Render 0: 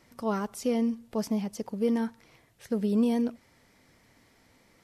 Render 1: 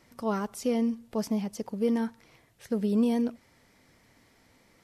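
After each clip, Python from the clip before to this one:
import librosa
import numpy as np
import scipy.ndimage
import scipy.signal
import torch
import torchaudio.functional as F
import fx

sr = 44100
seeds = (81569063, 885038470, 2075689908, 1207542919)

y = x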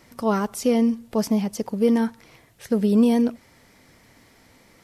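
y = fx.high_shelf(x, sr, hz=12000.0, db=3.5)
y = y * librosa.db_to_amplitude(7.5)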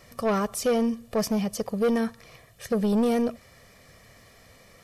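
y = x + 0.6 * np.pad(x, (int(1.7 * sr / 1000.0), 0))[:len(x)]
y = 10.0 ** (-18.0 / 20.0) * np.tanh(y / 10.0 ** (-18.0 / 20.0))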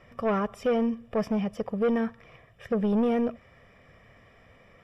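y = scipy.signal.savgol_filter(x, 25, 4, mode='constant')
y = y * librosa.db_to_amplitude(-1.5)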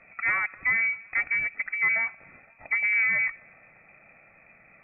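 y = fx.echo_thinned(x, sr, ms=257, feedback_pct=78, hz=880.0, wet_db=-22.5)
y = fx.freq_invert(y, sr, carrier_hz=2500)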